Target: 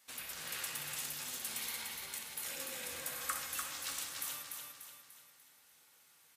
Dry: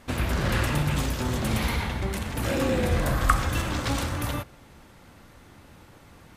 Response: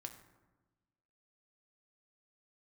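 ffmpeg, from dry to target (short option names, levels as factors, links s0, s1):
-filter_complex "[0:a]aderivative,aecho=1:1:294|588|882|1176|1470|1764:0.596|0.274|0.126|0.058|0.0267|0.0123[s0];[1:a]atrim=start_sample=2205,atrim=end_sample=6174,asetrate=61740,aresample=44100[s1];[s0][s1]afir=irnorm=-1:irlink=0,volume=1.58"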